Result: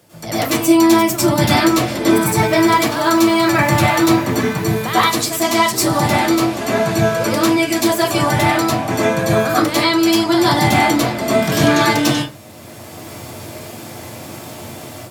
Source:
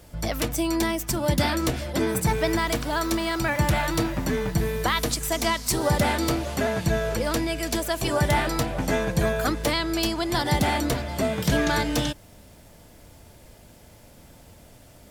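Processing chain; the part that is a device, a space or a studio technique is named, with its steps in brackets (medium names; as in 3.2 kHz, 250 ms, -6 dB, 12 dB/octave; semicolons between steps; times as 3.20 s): far laptop microphone (reverberation RT60 0.35 s, pre-delay 93 ms, DRR -10 dB; high-pass 110 Hz 24 dB/octave; level rider); trim -1 dB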